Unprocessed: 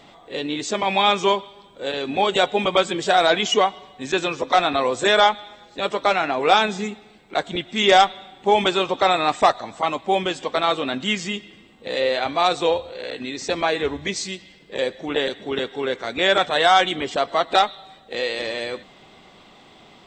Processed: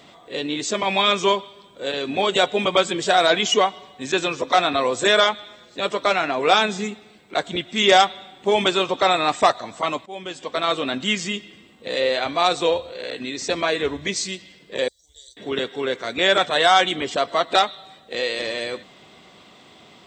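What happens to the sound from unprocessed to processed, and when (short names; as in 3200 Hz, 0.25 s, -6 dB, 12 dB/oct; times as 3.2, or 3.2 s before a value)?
10.06–10.77 fade in, from -20.5 dB
14.88–15.37 inverse Chebyshev band-stop 120–2800 Hz
whole clip: HPF 66 Hz; high shelf 5400 Hz +5 dB; notch 820 Hz, Q 12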